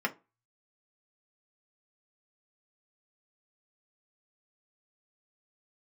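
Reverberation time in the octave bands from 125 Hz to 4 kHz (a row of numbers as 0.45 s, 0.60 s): 0.35 s, 0.30 s, 0.25 s, 0.30 s, 0.20 s, 0.15 s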